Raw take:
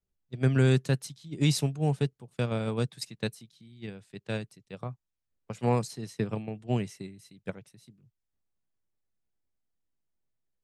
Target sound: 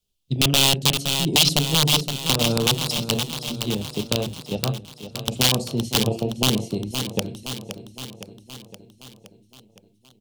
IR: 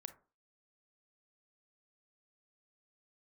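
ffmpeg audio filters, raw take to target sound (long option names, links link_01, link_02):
-filter_complex "[1:a]atrim=start_sample=2205,asetrate=52920,aresample=44100[link_01];[0:a][link_01]afir=irnorm=-1:irlink=0,asetrate=45938,aresample=44100,afwtdn=0.00631,acompressor=threshold=-54dB:ratio=2,aeval=exprs='(mod(89.1*val(0)+1,2)-1)/89.1':channel_layout=same,highshelf=frequency=2400:width_type=q:width=3:gain=9,aecho=1:1:517|1034|1551|2068|2585|3102|3619:0.251|0.151|0.0904|0.0543|0.0326|0.0195|0.0117,alimiter=level_in=29dB:limit=-1dB:release=50:level=0:latency=1,volume=-1dB"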